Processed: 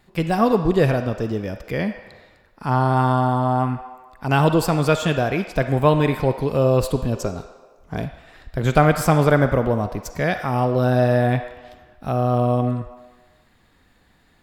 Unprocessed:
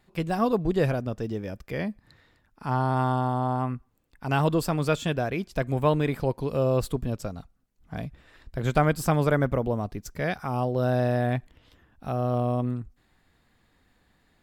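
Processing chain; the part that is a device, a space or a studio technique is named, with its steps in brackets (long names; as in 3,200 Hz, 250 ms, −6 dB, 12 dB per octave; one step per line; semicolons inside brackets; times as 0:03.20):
filtered reverb send (on a send: high-pass filter 560 Hz 12 dB per octave + low-pass filter 6,900 Hz 12 dB per octave + convolution reverb RT60 1.4 s, pre-delay 37 ms, DRR 7.5 dB)
0:07.15–0:08.04: on the sum: thirty-one-band graphic EQ 400 Hz +11 dB, 1,000 Hz +3 dB, 6,300 Hz +8 dB
level +6.5 dB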